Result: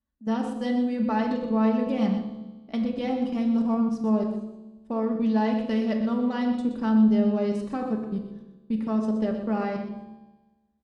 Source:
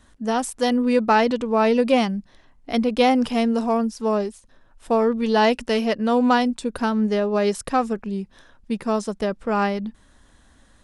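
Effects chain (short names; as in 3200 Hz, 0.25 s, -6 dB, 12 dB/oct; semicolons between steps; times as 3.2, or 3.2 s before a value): gate -45 dBFS, range -18 dB; HPF 47 Hz; low shelf 500 Hz +7 dB; level quantiser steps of 20 dB; air absorption 62 m; resonator 73 Hz, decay 1.3 s, harmonics all, mix 70%; echo 0.123 s -9.5 dB; on a send at -2 dB: reverb RT60 0.80 s, pre-delay 3 ms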